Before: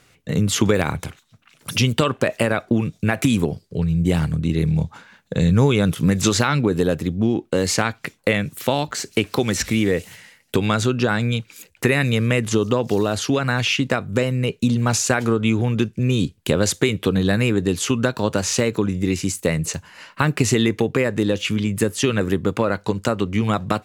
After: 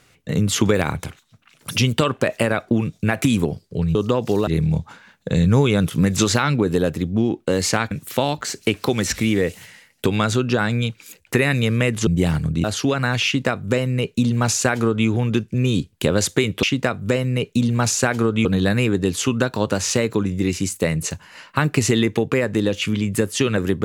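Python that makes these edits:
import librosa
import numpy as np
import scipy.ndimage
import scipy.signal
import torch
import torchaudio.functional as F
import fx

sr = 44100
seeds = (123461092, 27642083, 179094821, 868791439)

y = fx.edit(x, sr, fx.swap(start_s=3.95, length_s=0.57, other_s=12.57, other_length_s=0.52),
    fx.cut(start_s=7.96, length_s=0.45),
    fx.duplicate(start_s=13.7, length_s=1.82, to_s=17.08), tone=tone)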